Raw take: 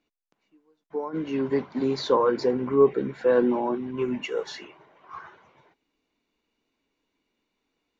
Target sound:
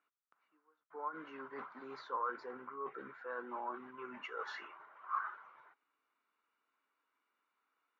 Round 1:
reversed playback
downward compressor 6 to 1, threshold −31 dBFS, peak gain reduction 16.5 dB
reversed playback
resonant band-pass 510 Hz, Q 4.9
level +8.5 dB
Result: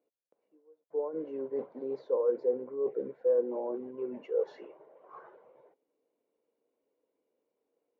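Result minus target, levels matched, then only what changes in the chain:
1,000 Hz band −19.0 dB
change: resonant band-pass 1,300 Hz, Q 4.9

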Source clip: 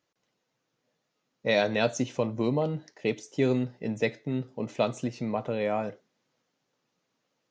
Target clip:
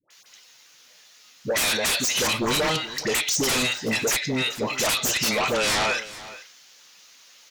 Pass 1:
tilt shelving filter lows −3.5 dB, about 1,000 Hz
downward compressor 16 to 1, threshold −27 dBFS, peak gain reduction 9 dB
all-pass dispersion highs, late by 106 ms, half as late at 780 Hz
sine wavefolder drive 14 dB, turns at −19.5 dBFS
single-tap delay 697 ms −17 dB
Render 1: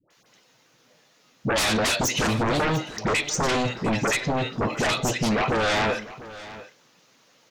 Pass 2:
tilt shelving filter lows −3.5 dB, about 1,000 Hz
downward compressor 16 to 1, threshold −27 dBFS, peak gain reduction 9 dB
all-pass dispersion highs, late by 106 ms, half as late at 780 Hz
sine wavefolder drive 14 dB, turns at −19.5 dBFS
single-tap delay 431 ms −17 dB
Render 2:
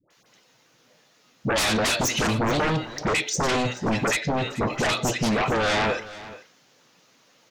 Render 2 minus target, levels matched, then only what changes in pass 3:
1,000 Hz band +4.5 dB
change: tilt shelving filter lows −15.5 dB, about 1,000 Hz

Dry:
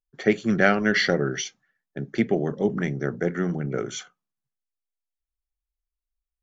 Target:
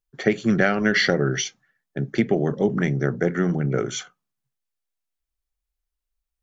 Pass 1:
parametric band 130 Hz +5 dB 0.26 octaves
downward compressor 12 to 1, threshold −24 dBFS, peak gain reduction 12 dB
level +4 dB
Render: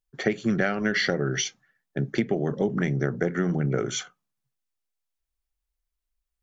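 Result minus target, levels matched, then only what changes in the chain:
downward compressor: peak gain reduction +5.5 dB
change: downward compressor 12 to 1, threshold −18 dBFS, peak gain reduction 6.5 dB

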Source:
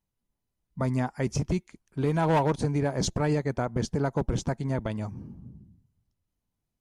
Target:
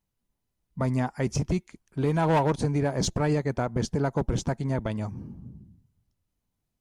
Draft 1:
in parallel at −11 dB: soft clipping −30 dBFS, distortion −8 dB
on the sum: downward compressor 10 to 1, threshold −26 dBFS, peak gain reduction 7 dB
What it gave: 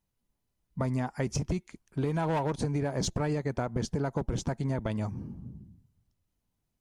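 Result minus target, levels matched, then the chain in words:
downward compressor: peak gain reduction +7 dB
in parallel at −11 dB: soft clipping −30 dBFS, distortion −8 dB

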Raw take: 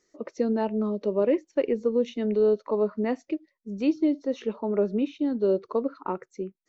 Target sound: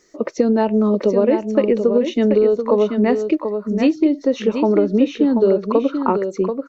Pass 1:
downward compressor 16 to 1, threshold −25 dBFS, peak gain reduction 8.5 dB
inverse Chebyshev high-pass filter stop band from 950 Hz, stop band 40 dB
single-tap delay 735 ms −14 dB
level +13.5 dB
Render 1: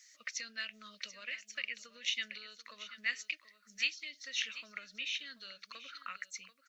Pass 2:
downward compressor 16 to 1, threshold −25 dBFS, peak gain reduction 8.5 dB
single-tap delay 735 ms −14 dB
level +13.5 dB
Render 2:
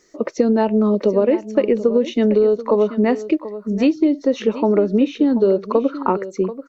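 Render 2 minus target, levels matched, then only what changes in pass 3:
echo-to-direct −7 dB
change: single-tap delay 735 ms −7 dB

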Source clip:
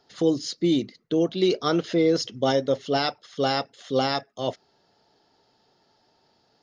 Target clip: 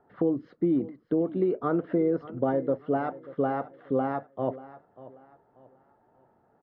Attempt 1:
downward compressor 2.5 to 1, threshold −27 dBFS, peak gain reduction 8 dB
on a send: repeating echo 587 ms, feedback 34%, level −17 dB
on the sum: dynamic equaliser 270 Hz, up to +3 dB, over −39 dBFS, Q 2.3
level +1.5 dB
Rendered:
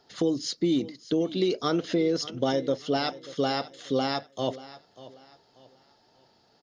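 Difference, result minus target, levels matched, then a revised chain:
2,000 Hz band +4.5 dB
downward compressor 2.5 to 1, threshold −27 dBFS, peak gain reduction 8 dB
low-pass filter 1,500 Hz 24 dB per octave
on a send: repeating echo 587 ms, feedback 34%, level −17 dB
on the sum: dynamic equaliser 270 Hz, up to +3 dB, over −39 dBFS, Q 2.3
level +1.5 dB

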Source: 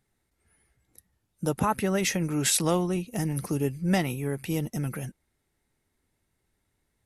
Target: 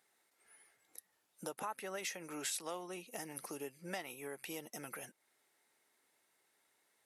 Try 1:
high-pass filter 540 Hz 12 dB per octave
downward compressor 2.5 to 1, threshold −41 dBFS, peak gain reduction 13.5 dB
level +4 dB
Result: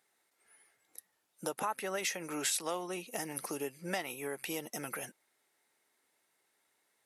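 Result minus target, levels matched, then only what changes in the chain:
downward compressor: peak gain reduction −6.5 dB
change: downward compressor 2.5 to 1, threshold −52 dBFS, peak gain reduction 20 dB

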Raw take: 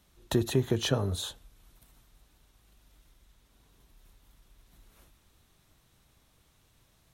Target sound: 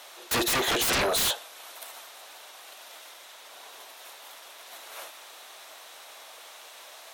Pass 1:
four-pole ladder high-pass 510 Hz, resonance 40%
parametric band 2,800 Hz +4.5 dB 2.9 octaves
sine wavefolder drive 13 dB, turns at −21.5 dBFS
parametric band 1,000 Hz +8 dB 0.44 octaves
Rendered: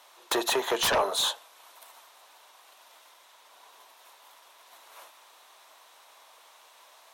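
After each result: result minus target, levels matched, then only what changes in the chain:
sine wavefolder: distortion −17 dB; 1,000 Hz band +2.5 dB
change: sine wavefolder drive 23 dB, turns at −21.5 dBFS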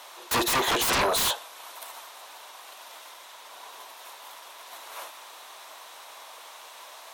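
1,000 Hz band +4.0 dB
remove: second parametric band 1,000 Hz +8 dB 0.44 octaves

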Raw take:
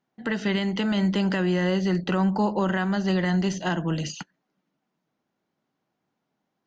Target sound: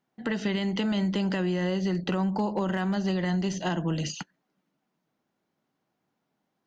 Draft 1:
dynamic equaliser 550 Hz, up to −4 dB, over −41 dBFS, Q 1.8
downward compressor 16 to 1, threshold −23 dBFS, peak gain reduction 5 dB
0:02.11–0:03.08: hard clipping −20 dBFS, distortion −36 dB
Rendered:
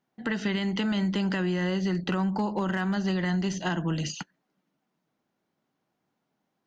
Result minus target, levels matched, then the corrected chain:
2,000 Hz band +2.5 dB
dynamic equaliser 1,500 Hz, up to −4 dB, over −41 dBFS, Q 1.8
downward compressor 16 to 1, threshold −23 dBFS, peak gain reduction 5 dB
0:02.11–0:03.08: hard clipping −20 dBFS, distortion −38 dB

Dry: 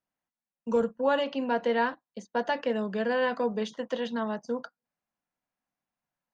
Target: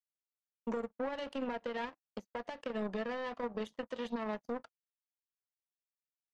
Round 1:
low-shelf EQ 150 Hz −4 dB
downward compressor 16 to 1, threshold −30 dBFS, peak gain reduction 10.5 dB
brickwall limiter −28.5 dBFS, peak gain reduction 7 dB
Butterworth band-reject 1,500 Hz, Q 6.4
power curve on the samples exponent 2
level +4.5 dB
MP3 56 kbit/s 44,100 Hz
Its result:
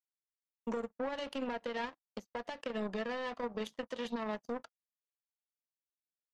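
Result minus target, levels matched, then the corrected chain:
4,000 Hz band +3.0 dB
low-shelf EQ 150 Hz −4 dB
downward compressor 16 to 1, threshold −30 dBFS, peak gain reduction 10.5 dB
brickwall limiter −28.5 dBFS, peak gain reduction 7 dB
Butterworth band-reject 1,500 Hz, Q 6.4
high-shelf EQ 2,500 Hz −6 dB
power curve on the samples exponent 2
level +4.5 dB
MP3 56 kbit/s 44,100 Hz

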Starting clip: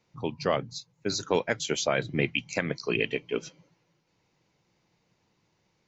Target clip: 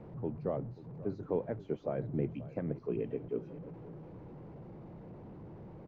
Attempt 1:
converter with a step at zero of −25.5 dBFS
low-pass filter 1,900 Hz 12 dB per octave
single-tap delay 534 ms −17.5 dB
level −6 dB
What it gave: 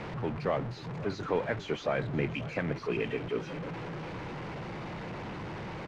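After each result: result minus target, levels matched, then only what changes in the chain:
2,000 Hz band +17.0 dB; converter with a step at zero: distortion +6 dB
change: low-pass filter 550 Hz 12 dB per octave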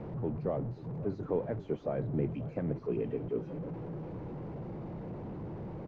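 converter with a step at zero: distortion +6 dB
change: converter with a step at zero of −33.5 dBFS

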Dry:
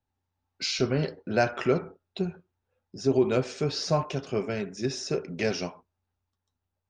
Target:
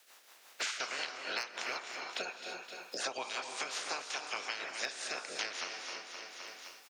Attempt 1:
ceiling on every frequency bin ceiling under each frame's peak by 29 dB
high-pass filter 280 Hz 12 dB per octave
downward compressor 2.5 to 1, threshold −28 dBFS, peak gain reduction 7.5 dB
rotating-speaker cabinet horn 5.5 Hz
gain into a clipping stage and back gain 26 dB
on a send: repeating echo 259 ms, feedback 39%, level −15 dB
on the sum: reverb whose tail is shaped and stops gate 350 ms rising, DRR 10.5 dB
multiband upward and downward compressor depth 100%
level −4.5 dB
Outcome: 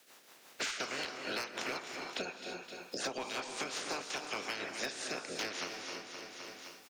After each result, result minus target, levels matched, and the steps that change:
gain into a clipping stage and back: distortion +17 dB; 250 Hz band +9.0 dB
change: gain into a clipping stage and back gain 17 dB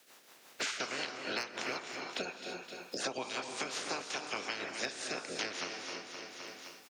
250 Hz band +9.0 dB
change: high-pass filter 620 Hz 12 dB per octave

